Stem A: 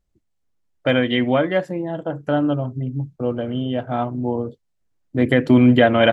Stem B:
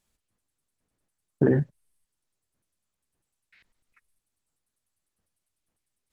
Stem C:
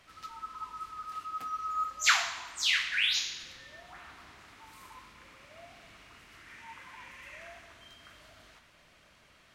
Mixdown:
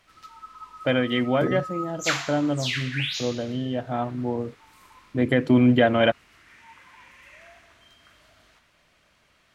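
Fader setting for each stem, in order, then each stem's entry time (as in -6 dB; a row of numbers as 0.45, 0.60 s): -4.5, -6.0, -1.5 dB; 0.00, 0.00, 0.00 s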